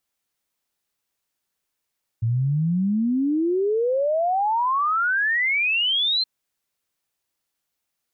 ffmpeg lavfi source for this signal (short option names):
-f lavfi -i "aevalsrc='0.119*clip(min(t,4.02-t)/0.01,0,1)*sin(2*PI*110*4.02/log(4200/110)*(exp(log(4200/110)*t/4.02)-1))':d=4.02:s=44100"